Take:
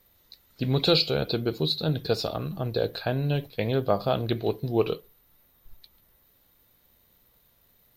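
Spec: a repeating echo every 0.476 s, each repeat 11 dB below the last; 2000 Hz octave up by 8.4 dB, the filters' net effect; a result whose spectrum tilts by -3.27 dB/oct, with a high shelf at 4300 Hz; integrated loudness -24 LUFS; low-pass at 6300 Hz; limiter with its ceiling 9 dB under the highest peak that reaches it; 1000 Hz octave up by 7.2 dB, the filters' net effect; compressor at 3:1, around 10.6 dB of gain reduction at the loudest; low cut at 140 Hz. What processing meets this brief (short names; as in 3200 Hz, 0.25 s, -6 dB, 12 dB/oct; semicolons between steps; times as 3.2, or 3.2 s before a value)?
HPF 140 Hz; LPF 6300 Hz; bell 1000 Hz +8 dB; bell 2000 Hz +7 dB; high shelf 4300 Hz +8.5 dB; compressor 3:1, threshold -28 dBFS; limiter -19.5 dBFS; feedback echo 0.476 s, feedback 28%, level -11 dB; gain +8.5 dB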